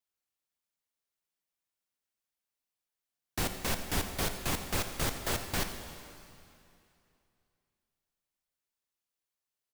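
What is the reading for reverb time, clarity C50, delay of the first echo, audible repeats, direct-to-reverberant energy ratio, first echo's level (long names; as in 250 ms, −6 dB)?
2.7 s, 7.0 dB, 87 ms, 1, 6.0 dB, −15.5 dB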